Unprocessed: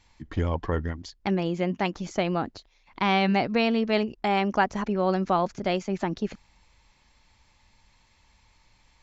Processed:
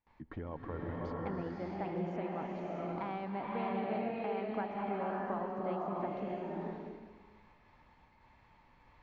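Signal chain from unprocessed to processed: gate with hold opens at -51 dBFS; low-pass 1.5 kHz 12 dB/octave; bass shelf 120 Hz -10.5 dB; compression 2.5:1, threshold -46 dBFS, peak gain reduction 18 dB; swelling reverb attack 630 ms, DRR -4 dB

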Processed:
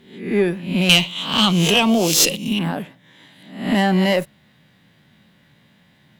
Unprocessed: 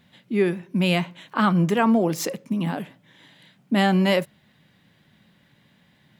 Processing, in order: reverse spectral sustain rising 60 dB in 0.55 s; 0.89–2.59 s: resonant high shelf 2.2 kHz +10.5 dB, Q 3; valve stage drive 7 dB, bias 0.4; trim +3.5 dB

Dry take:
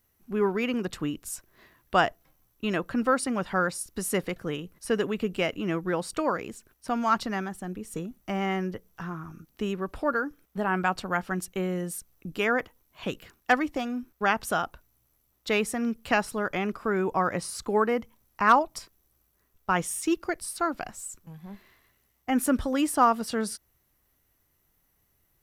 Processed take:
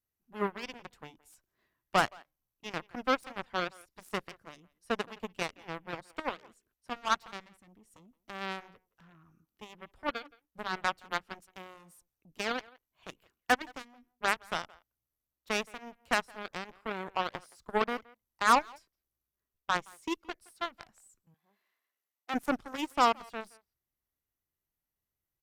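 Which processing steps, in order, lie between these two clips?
Chebyshev shaper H 3 -32 dB, 4 -34 dB, 5 -43 dB, 7 -16 dB, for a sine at -9 dBFS; 21.34–22.34 s: high-pass 490 Hz 12 dB/octave; speakerphone echo 170 ms, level -22 dB; trim -3.5 dB

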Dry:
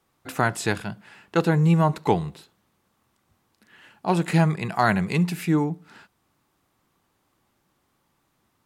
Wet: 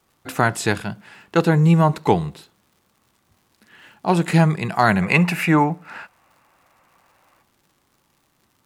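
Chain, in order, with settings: time-frequency box 5.02–7.42 s, 490–2900 Hz +10 dB; crackle 160 per s -52 dBFS; trim +4 dB

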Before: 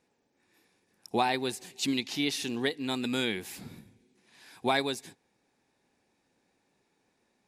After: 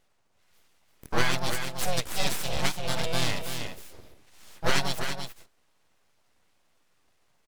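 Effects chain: delay 333 ms -7 dB; full-wave rectifier; harmony voices +5 st -2 dB; trim +2.5 dB

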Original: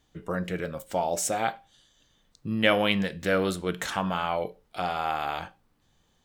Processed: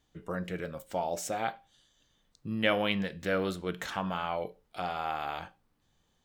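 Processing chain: dynamic bell 9.1 kHz, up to -7 dB, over -51 dBFS, Q 1.1; trim -5 dB

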